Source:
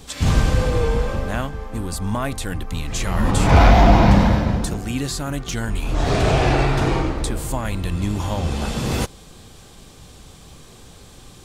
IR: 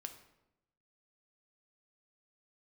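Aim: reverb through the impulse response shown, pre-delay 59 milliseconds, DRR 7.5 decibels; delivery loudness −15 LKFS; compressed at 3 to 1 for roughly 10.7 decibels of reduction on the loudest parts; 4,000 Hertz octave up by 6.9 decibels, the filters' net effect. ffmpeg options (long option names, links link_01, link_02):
-filter_complex "[0:a]equalizer=frequency=4000:width_type=o:gain=8.5,acompressor=threshold=-22dB:ratio=3,asplit=2[link_01][link_02];[1:a]atrim=start_sample=2205,adelay=59[link_03];[link_02][link_03]afir=irnorm=-1:irlink=0,volume=-3.5dB[link_04];[link_01][link_04]amix=inputs=2:normalize=0,volume=10dB"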